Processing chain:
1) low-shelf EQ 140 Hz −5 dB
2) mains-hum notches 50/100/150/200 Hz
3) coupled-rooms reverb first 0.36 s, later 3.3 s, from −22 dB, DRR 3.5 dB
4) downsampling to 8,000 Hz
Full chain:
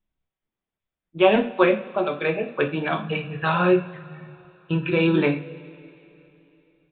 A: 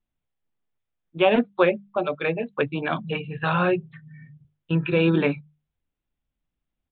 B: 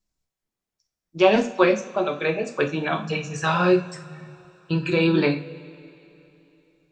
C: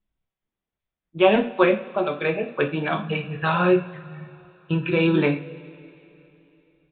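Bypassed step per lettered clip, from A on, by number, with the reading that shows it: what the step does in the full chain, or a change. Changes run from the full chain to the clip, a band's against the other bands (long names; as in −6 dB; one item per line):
3, change in momentary loudness spread −9 LU
4, 4 kHz band +1.5 dB
2, change in momentary loudness spread +3 LU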